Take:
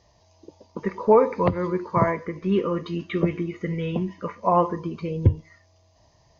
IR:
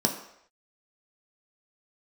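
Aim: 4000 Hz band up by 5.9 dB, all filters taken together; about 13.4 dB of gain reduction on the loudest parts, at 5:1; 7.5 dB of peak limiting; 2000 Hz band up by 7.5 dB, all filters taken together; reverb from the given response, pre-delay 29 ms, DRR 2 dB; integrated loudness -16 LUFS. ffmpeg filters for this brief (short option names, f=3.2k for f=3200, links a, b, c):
-filter_complex "[0:a]equalizer=f=2k:t=o:g=7.5,equalizer=f=4k:t=o:g=4.5,acompressor=threshold=-26dB:ratio=5,alimiter=limit=-22.5dB:level=0:latency=1,asplit=2[a][b];[1:a]atrim=start_sample=2205,adelay=29[c];[b][c]afir=irnorm=-1:irlink=0,volume=-12dB[d];[a][d]amix=inputs=2:normalize=0,volume=12dB"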